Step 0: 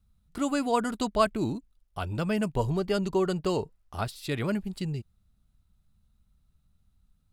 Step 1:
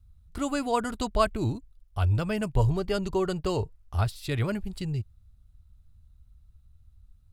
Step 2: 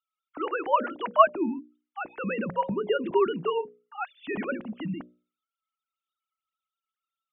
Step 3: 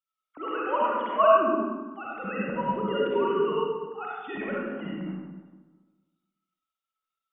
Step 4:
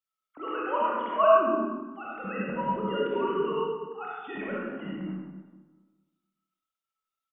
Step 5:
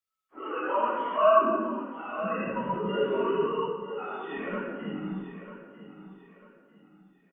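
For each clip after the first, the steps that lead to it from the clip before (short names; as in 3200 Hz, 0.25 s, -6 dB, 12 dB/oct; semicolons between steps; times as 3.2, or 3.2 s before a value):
resonant low shelf 130 Hz +10.5 dB, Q 1.5
sine-wave speech; notches 60/120/180/240/300/360/420/480/540/600 Hz
digital reverb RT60 1.4 s, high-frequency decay 0.5×, pre-delay 20 ms, DRR -6 dB; gain -6.5 dB
doubler 26 ms -7 dB; gain -2.5 dB
phase scrambler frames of 0.1 s; feedback echo 0.945 s, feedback 34%, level -13 dB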